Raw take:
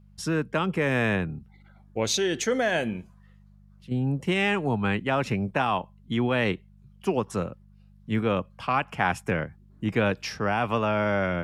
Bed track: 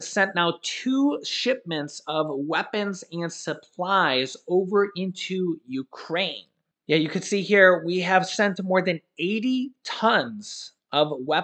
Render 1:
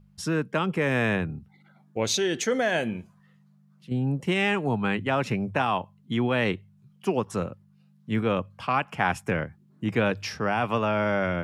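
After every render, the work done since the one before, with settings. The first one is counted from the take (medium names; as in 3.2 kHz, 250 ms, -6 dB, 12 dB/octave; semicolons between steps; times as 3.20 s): de-hum 50 Hz, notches 2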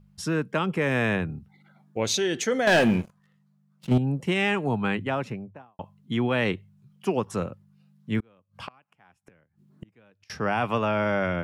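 2.67–3.98 s: waveshaping leveller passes 3; 4.86–5.79 s: studio fade out; 8.20–10.30 s: inverted gate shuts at -27 dBFS, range -34 dB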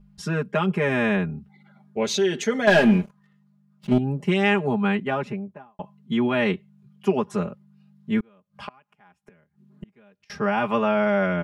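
treble shelf 5 kHz -9 dB; comb 4.9 ms, depth 95%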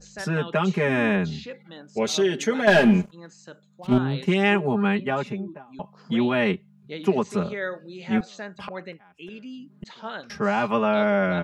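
add bed track -15 dB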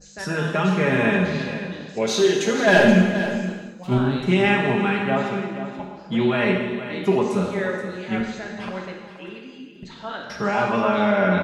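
delay 476 ms -11.5 dB; gated-style reverb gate 450 ms falling, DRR 0 dB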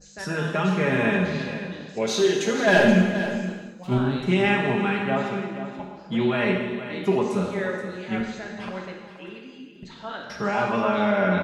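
trim -2.5 dB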